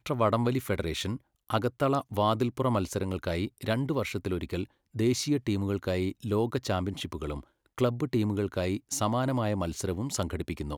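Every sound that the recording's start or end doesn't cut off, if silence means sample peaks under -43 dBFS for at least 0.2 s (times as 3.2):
1.49–4.65
4.95–7.43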